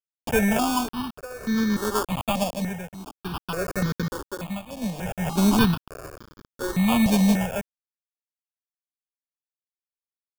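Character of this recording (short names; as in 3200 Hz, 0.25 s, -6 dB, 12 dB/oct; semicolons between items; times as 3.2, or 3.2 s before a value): a quantiser's noise floor 6-bit, dither none; tremolo triangle 0.59 Hz, depth 85%; aliases and images of a low sample rate 2000 Hz, jitter 0%; notches that jump at a steady rate 3.4 Hz 380–2700 Hz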